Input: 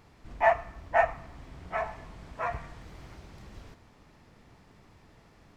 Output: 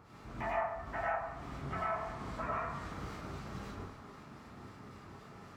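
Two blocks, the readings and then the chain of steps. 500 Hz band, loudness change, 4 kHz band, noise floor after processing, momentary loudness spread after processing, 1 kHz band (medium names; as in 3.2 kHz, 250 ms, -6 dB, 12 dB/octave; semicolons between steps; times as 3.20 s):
-9.0 dB, -9.5 dB, -2.0 dB, -54 dBFS, 16 LU, -7.0 dB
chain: high-pass 54 Hz; peaking EQ 1.3 kHz +8.5 dB 0.45 oct; compression 4:1, threshold -38 dBFS, peak gain reduction 18.5 dB; harmonic tremolo 3.8 Hz, depth 70%, crossover 1.3 kHz; plate-style reverb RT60 0.76 s, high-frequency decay 0.5×, pre-delay 80 ms, DRR -5.5 dB; trim +1 dB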